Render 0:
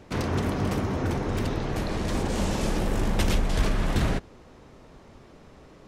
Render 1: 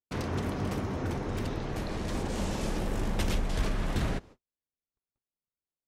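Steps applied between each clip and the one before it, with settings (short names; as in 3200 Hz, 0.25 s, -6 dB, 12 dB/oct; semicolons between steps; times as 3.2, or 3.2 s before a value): gate -42 dBFS, range -50 dB; gain -5.5 dB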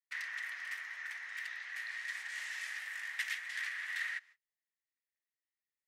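ladder high-pass 1800 Hz, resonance 85%; gain +5.5 dB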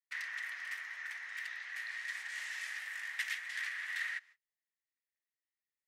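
nothing audible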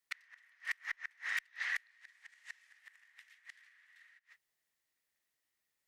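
flipped gate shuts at -33 dBFS, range -34 dB; added harmonics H 2 -41 dB, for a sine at -30.5 dBFS; gain +9 dB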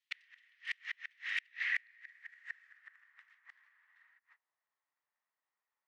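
band-pass sweep 3000 Hz -> 1000 Hz, 1.2–3.61; gain +6 dB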